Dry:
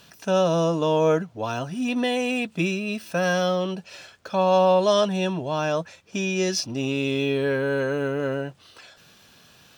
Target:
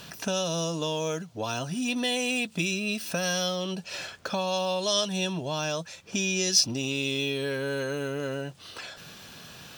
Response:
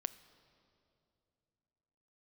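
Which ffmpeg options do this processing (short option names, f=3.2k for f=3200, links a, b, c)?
-filter_complex "[0:a]equalizer=f=160:t=o:w=0.4:g=3,acrossover=split=3300[a][b];[a]acompressor=threshold=-38dB:ratio=4[c];[c][b]amix=inputs=2:normalize=0,volume=7dB"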